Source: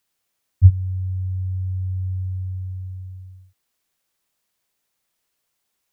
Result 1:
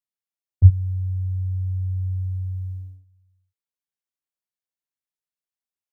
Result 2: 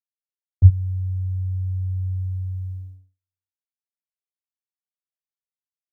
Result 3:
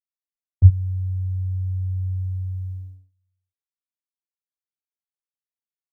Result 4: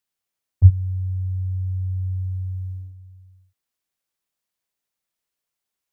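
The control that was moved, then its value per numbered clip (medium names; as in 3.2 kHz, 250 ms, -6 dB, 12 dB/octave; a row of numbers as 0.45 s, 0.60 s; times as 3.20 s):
gate, range: -22 dB, -54 dB, -34 dB, -9 dB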